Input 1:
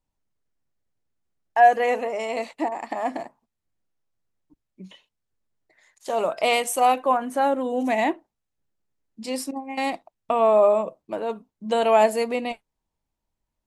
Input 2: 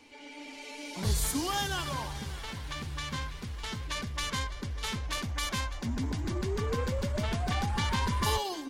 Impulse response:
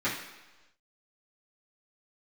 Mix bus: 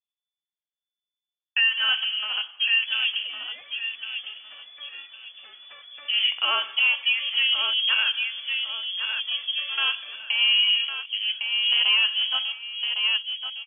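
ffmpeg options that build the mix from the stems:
-filter_complex "[0:a]afwtdn=0.0224,volume=0.5dB,asplit=3[a][b][c];[b]volume=-19.5dB[d];[c]volume=-7.5dB[e];[1:a]dynaudnorm=f=310:g=7:m=8dB,flanger=delay=1.8:depth=9:regen=-71:speed=0.49:shape=triangular,adelay=1800,volume=-13.5dB,asplit=2[f][g];[g]volume=-16dB[h];[2:a]atrim=start_sample=2205[i];[d][i]afir=irnorm=-1:irlink=0[j];[e][h]amix=inputs=2:normalize=0,aecho=0:1:1107|2214|3321|4428:1|0.27|0.0729|0.0197[k];[a][f][j][k]amix=inputs=4:normalize=0,lowpass=f=3k:t=q:w=0.5098,lowpass=f=3k:t=q:w=0.6013,lowpass=f=3k:t=q:w=0.9,lowpass=f=3k:t=q:w=2.563,afreqshift=-3500,highpass=f=570:p=1,alimiter=limit=-12.5dB:level=0:latency=1:release=225"

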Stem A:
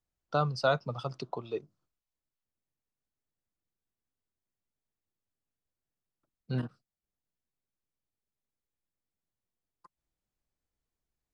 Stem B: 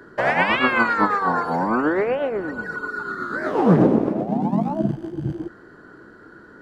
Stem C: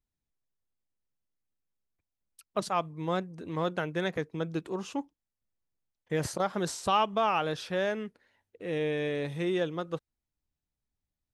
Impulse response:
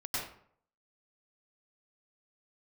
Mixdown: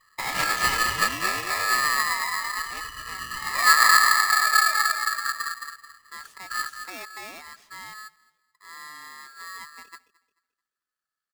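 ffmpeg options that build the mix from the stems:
-filter_complex "[0:a]flanger=delay=20:depth=7.8:speed=2.2,highpass=140,equalizer=f=610:w=1:g=-6.5,volume=1.5dB,asplit=2[a][b];[b]volume=-9dB[c];[1:a]bandpass=f=300:t=q:w=0.55:csg=0,agate=range=-12dB:threshold=-35dB:ratio=16:detection=peak,volume=-8dB,asplit=2[d][e];[e]volume=-4.5dB[f];[2:a]bandreject=f=1.4k:w=7.1,volume=-15dB,asplit=2[g][h];[h]volume=-22.5dB[i];[c][f][i]amix=inputs=3:normalize=0,aecho=0:1:218|436|654|872:1|0.31|0.0961|0.0298[j];[a][d][g][j]amix=inputs=4:normalize=0,equalizer=f=210:w=1.5:g=12,acrossover=split=170[k][l];[k]acompressor=threshold=-30dB:ratio=6[m];[m][l]amix=inputs=2:normalize=0,aeval=exprs='val(0)*sgn(sin(2*PI*1500*n/s))':c=same"

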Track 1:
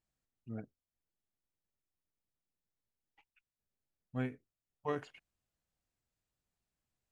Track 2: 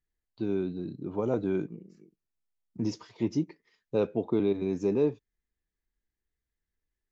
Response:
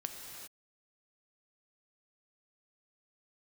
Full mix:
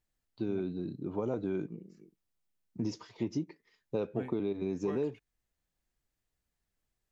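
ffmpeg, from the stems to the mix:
-filter_complex "[0:a]volume=1dB[a];[1:a]acompressor=threshold=-28dB:ratio=6,volume=-1dB,asplit=2[b][c];[c]apad=whole_len=313596[d];[a][d]sidechaincompress=threshold=-34dB:ratio=8:attack=16:release=812[e];[e][b]amix=inputs=2:normalize=0"

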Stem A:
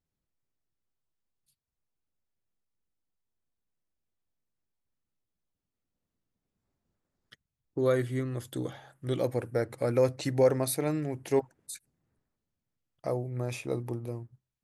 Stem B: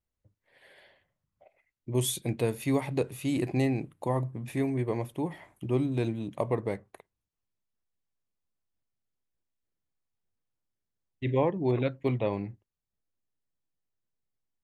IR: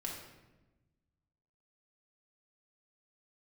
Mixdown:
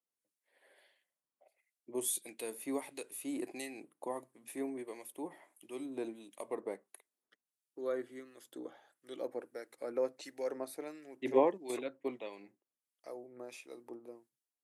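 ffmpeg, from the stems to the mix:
-filter_complex "[0:a]volume=-8.5dB,asplit=2[a][b];[1:a]equalizer=f=10k:t=o:w=1.1:g=14,volume=0dB[c];[b]apad=whole_len=645437[d];[c][d]sidechaingate=range=-7dB:threshold=-54dB:ratio=16:detection=peak[e];[a][e]amix=inputs=2:normalize=0,acrossover=split=1700[f][g];[f]aeval=exprs='val(0)*(1-0.7/2+0.7/2*cos(2*PI*1.5*n/s))':c=same[h];[g]aeval=exprs='val(0)*(1-0.7/2-0.7/2*cos(2*PI*1.5*n/s))':c=same[i];[h][i]amix=inputs=2:normalize=0,highpass=f=270:w=0.5412,highpass=f=270:w=1.3066"

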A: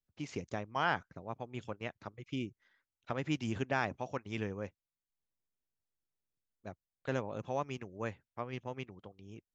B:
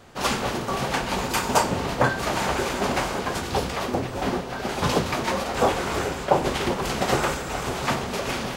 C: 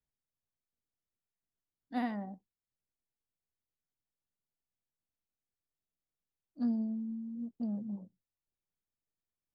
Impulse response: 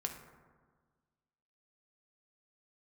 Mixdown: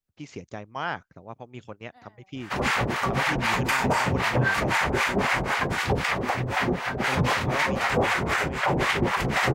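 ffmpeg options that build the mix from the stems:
-filter_complex "[0:a]volume=1.5dB[a];[1:a]equalizer=f=125:t=o:w=1:g=7,equalizer=f=1k:t=o:w=1:g=4,equalizer=f=2k:t=o:w=1:g=12,acrossover=split=640[b][c];[b]aeval=exprs='val(0)*(1-1/2+1/2*cos(2*PI*3.9*n/s))':c=same[d];[c]aeval=exprs='val(0)*(1-1/2-1/2*cos(2*PI*3.9*n/s))':c=same[e];[d][e]amix=inputs=2:normalize=0,adelay=2350,volume=2dB[f];[2:a]highpass=580,volume=-14.5dB[g];[a][f][g]amix=inputs=3:normalize=0,alimiter=limit=-13.5dB:level=0:latency=1:release=54"

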